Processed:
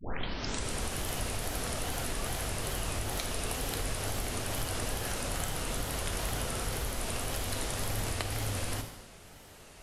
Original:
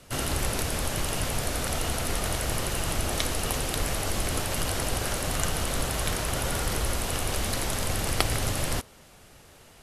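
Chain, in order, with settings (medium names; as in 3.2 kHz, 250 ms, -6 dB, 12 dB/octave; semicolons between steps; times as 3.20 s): tape start-up on the opening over 0.83 s; compression 5:1, threshold -31 dBFS, peak gain reduction 12.5 dB; gated-style reverb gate 360 ms falling, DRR 4.5 dB; wow and flutter 130 cents; trim -1 dB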